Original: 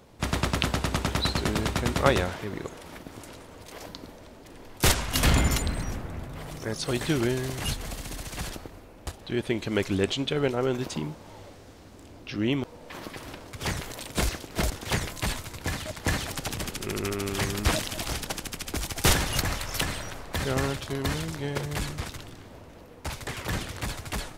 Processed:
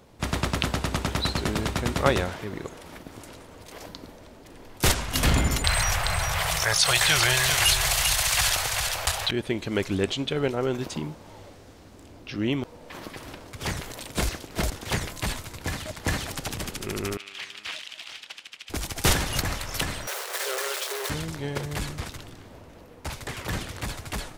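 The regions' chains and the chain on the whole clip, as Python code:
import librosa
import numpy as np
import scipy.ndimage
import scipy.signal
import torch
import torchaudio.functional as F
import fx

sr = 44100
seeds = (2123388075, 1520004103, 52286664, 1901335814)

y = fx.chain(x, sr, fx.curve_eq(hz=(100.0, 160.0, 240.0, 690.0, 2500.0), db=(0, -6, -25, 6, 12)),
    fx.echo_single(ms=393, db=-9.0),
    fx.env_flatten(amount_pct=50), at=(5.64, 9.31))
y = fx.chain(y, sr, fx.self_delay(depth_ms=0.064),
    fx.bandpass_q(hz=2900.0, q=1.8), at=(17.17, 18.7))
y = fx.chain(y, sr, fx.high_shelf(hz=4400.0, db=10.0),
    fx.quant_companded(bits=2),
    fx.cheby_ripple_highpass(hz=370.0, ripple_db=3), at=(20.07, 21.1))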